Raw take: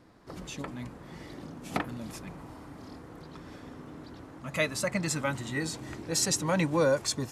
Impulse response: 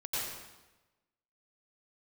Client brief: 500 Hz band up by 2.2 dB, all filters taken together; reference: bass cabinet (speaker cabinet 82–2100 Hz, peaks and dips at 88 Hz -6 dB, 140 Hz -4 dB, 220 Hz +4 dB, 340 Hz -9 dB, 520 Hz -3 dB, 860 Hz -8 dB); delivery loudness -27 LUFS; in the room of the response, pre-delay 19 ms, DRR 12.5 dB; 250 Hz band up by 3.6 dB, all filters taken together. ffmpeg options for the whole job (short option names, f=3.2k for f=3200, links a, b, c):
-filter_complex "[0:a]equalizer=f=250:t=o:g=5.5,equalizer=f=500:t=o:g=5.5,asplit=2[a][b];[1:a]atrim=start_sample=2205,adelay=19[c];[b][c]afir=irnorm=-1:irlink=0,volume=-17.5dB[d];[a][d]amix=inputs=2:normalize=0,highpass=f=82:w=0.5412,highpass=f=82:w=1.3066,equalizer=f=88:t=q:w=4:g=-6,equalizer=f=140:t=q:w=4:g=-4,equalizer=f=220:t=q:w=4:g=4,equalizer=f=340:t=q:w=4:g=-9,equalizer=f=520:t=q:w=4:g=-3,equalizer=f=860:t=q:w=4:g=-8,lowpass=f=2.1k:w=0.5412,lowpass=f=2.1k:w=1.3066,volume=4dB"